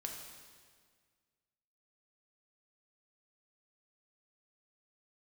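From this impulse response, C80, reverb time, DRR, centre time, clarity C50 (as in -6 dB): 5.0 dB, 1.8 s, 0.5 dB, 58 ms, 3.5 dB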